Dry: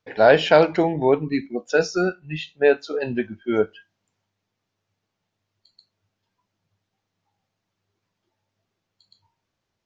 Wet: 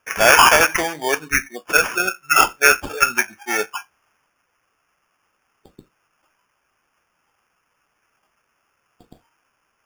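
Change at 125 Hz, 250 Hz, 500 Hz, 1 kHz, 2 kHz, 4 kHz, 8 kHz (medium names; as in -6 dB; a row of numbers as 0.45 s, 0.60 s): -7.0 dB, -7.5 dB, -5.0 dB, +8.5 dB, +11.0 dB, +9.5 dB, no reading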